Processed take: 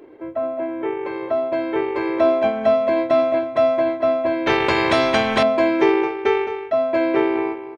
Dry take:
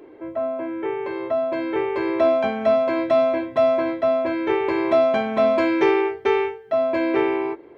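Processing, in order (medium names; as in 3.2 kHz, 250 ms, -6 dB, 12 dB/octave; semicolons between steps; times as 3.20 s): transient shaper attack +1 dB, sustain -7 dB; echo from a far wall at 37 m, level -9 dB; 4.46–5.43 s: spectrum-flattening compressor 2:1; trim +1 dB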